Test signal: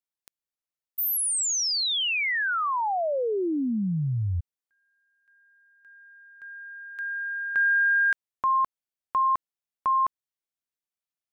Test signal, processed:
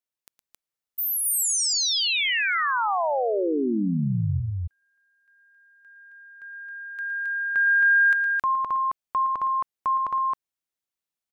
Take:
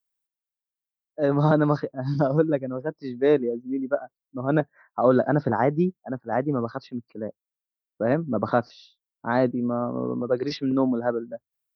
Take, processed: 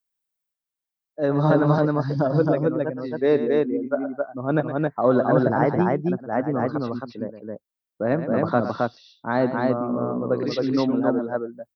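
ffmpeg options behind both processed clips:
-af "aecho=1:1:113.7|268.2:0.282|0.794"

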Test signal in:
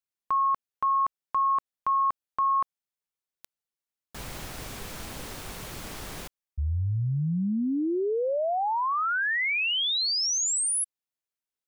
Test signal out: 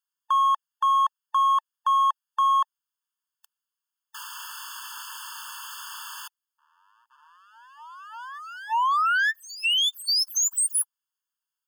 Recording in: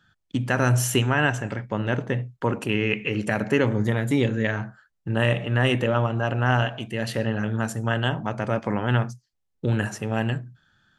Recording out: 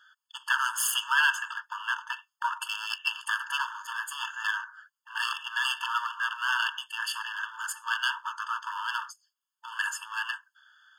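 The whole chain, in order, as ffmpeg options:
-af "bandreject=f=61.56:t=h:w=4,bandreject=f=123.12:t=h:w=4,aeval=exprs='clip(val(0),-1,0.0398)':c=same,afftfilt=real='re*eq(mod(floor(b*sr/1024/890),2),1)':imag='im*eq(mod(floor(b*sr/1024/890),2),1)':win_size=1024:overlap=0.75,volume=6dB"

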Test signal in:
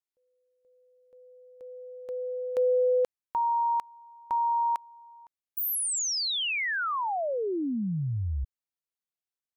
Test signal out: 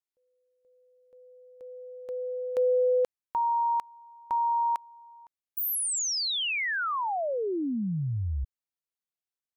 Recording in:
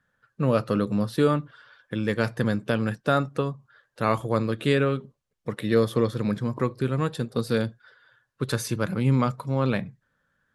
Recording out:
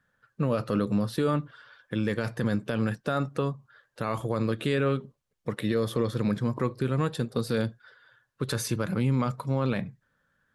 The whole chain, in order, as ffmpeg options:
-af "alimiter=limit=-16.5dB:level=0:latency=1:release=36"

